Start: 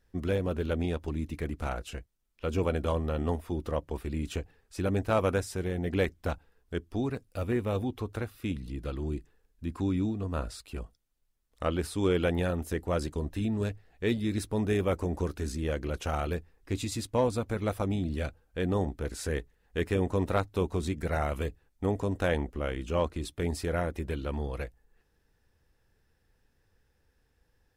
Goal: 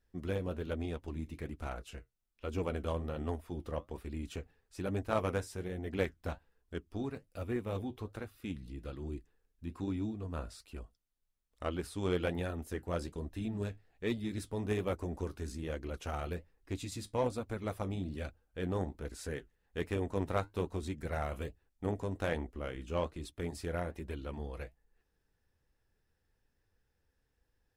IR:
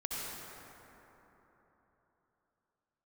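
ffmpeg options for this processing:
-af "flanger=delay=2.8:depth=9.2:regen=-59:speed=1.2:shape=sinusoidal,aeval=exprs='0.126*(cos(1*acos(clip(val(0)/0.126,-1,1)))-cos(1*PI/2))+0.0178*(cos(3*acos(clip(val(0)/0.126,-1,1)))-cos(3*PI/2))':c=same,volume=1.12"

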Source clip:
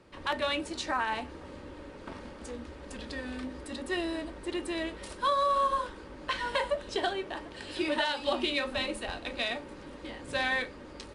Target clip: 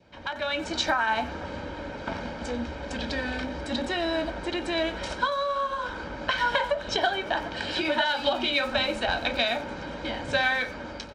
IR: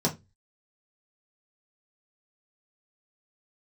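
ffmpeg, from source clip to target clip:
-filter_complex "[0:a]adynamicequalizer=threshold=0.00562:dfrequency=1300:dqfactor=2.6:tfrequency=1300:tqfactor=2.6:attack=5:release=100:ratio=0.375:range=2.5:mode=boostabove:tftype=bell,acompressor=threshold=0.0251:ratio=10,lowpass=f=6400:w=0.5412,lowpass=f=6400:w=1.3066,dynaudnorm=f=330:g=3:m=2.99,highpass=f=73:p=1,aecho=1:1:1.3:0.57,asplit=2[s0][s1];[s1]adelay=90,highpass=300,lowpass=3400,asoftclip=type=hard:threshold=0.0316,volume=0.224[s2];[s0][s2]amix=inputs=2:normalize=0,asplit=2[s3][s4];[1:a]atrim=start_sample=2205[s5];[s4][s5]afir=irnorm=-1:irlink=0,volume=0.0531[s6];[s3][s6]amix=inputs=2:normalize=0"

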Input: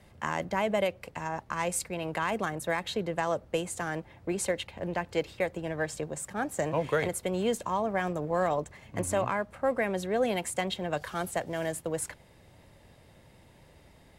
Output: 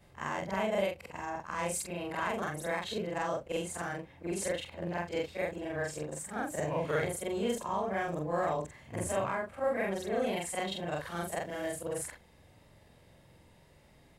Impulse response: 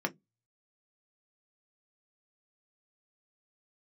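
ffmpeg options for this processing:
-af "afftfilt=real='re':imag='-im':win_size=4096:overlap=0.75,volume=1.12"

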